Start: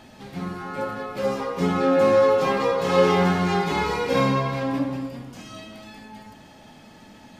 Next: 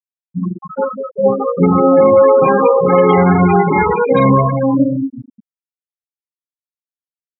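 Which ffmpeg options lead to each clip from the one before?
-af "afftfilt=real='re*gte(hypot(re,im),0.141)':imag='im*gte(hypot(re,im),0.141)':win_size=1024:overlap=0.75,alimiter=level_in=13.5dB:limit=-1dB:release=50:level=0:latency=1,volume=-1dB"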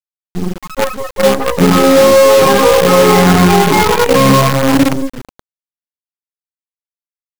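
-af "acrusher=bits=3:dc=4:mix=0:aa=0.000001,acontrast=87,volume=-1dB"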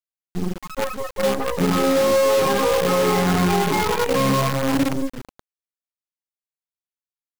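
-af "alimiter=limit=-7dB:level=0:latency=1:release=40,volume=-6.5dB"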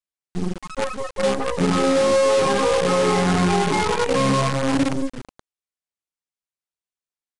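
-af "aresample=22050,aresample=44100"

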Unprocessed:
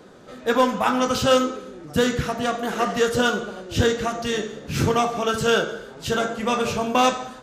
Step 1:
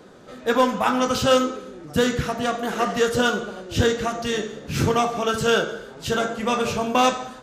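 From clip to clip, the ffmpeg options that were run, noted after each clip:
-af anull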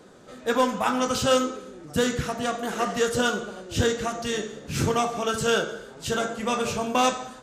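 -af "equalizer=f=8.2k:w=1.3:g=6,volume=-3.5dB"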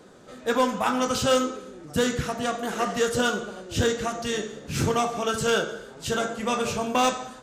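-af "asoftclip=type=hard:threshold=-14.5dB"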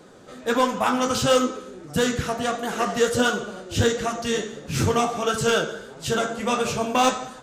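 -af "flanger=delay=5.2:depth=8.3:regen=57:speed=1.5:shape=triangular,volume=6.5dB"

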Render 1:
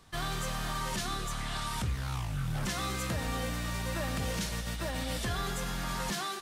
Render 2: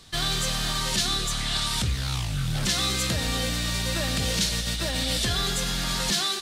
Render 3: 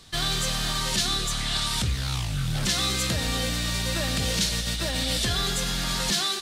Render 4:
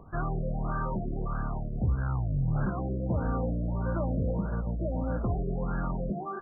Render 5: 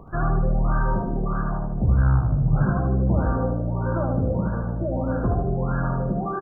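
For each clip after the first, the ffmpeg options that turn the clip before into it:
-af "equalizer=f=1k:t=o:w=1:g=-5,equalizer=f=4k:t=o:w=1:g=9,equalizer=f=8k:t=o:w=1:g=4,volume=6dB"
-af anull
-af "acompressor=mode=upward:threshold=-40dB:ratio=2.5,afftfilt=real='re*lt(b*sr/1024,670*pow(1700/670,0.5+0.5*sin(2*PI*1.6*pts/sr)))':imag='im*lt(b*sr/1024,670*pow(1700/670,0.5+0.5*sin(2*PI*1.6*pts/sr)))':win_size=1024:overlap=0.75"
-af "aecho=1:1:76|152|228|304|380|456:0.631|0.297|0.139|0.0655|0.0308|0.0145,volume=6dB"

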